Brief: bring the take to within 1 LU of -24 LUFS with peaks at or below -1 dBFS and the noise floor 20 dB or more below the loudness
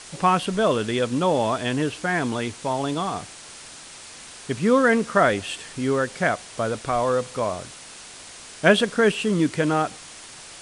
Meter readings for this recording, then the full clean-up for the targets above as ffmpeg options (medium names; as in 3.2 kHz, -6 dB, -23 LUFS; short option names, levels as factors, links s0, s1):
noise floor -42 dBFS; noise floor target -43 dBFS; loudness -22.5 LUFS; peak level -3.5 dBFS; loudness target -24.0 LUFS
-> -af "afftdn=nr=6:nf=-42"
-af "volume=0.841"